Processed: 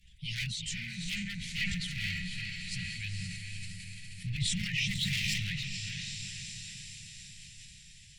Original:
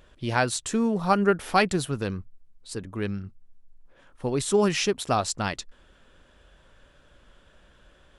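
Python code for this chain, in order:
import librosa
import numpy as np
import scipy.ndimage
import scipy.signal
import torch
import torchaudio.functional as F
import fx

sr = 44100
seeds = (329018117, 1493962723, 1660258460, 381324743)

y = fx.spec_quant(x, sr, step_db=15)
y = fx.chorus_voices(y, sr, voices=4, hz=0.27, base_ms=16, depth_ms=4.2, mix_pct=60)
y = fx.hpss(y, sr, part='harmonic', gain_db=-12)
y = fx.echo_diffused(y, sr, ms=464, feedback_pct=59, wet_db=-5.5)
y = fx.tube_stage(y, sr, drive_db=26.0, bias=0.65, at=(1.24, 1.91))
y = fx.env_lowpass_down(y, sr, base_hz=2900.0, full_db=-29.5)
y = fx.power_curve(y, sr, exponent=0.7, at=(4.95, 5.38))
y = np.clip(10.0 ** (27.5 / 20.0) * y, -1.0, 1.0) / 10.0 ** (27.5 / 20.0)
y = scipy.signal.sosfilt(scipy.signal.cheby1(5, 1.0, [180.0, 2000.0], 'bandstop', fs=sr, output='sos'), y)
y = fx.sustainer(y, sr, db_per_s=27.0)
y = y * 10.0 ** (7.0 / 20.0)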